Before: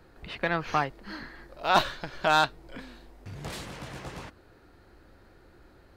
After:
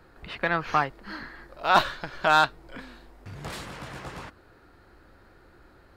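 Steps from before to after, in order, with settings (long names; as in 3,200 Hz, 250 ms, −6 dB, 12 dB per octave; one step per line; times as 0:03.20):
parametric band 1,300 Hz +4.5 dB 1.2 octaves
notch filter 6,100 Hz, Q 28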